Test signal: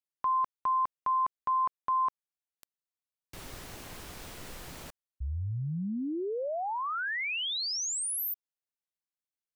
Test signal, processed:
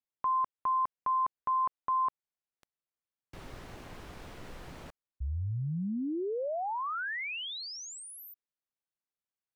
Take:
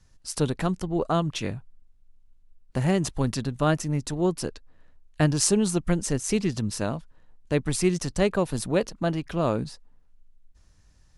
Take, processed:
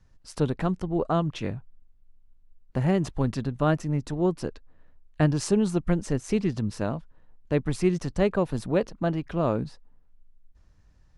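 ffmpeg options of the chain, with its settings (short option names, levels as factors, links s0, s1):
-af "lowpass=f=1900:p=1"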